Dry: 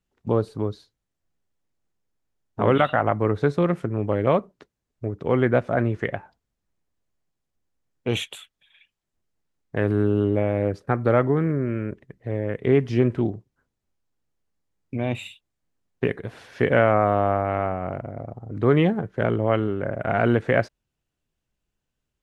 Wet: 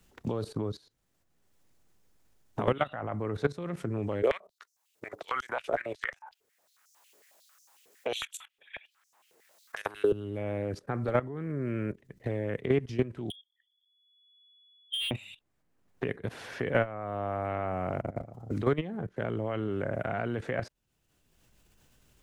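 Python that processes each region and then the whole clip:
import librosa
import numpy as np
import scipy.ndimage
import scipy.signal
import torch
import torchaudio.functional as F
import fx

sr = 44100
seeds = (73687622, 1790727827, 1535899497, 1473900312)

y = fx.chain(x, sr, fx.high_shelf(hz=6000.0, db=9.0),
    fx.filter_held_highpass(hz=11.0, low_hz=430.0, high_hz=5800.0), at=(4.22, 10.12))
y = fx.chain(y, sr, fx.spec_expand(power=2.9),
    fx.freq_invert(carrier_hz=3400),
    fx.clip_hard(threshold_db=-31.0), at=(13.3, 15.11))
y = fx.level_steps(y, sr, step_db=17)
y = fx.high_shelf(y, sr, hz=5800.0, db=4.5)
y = fx.band_squash(y, sr, depth_pct=70)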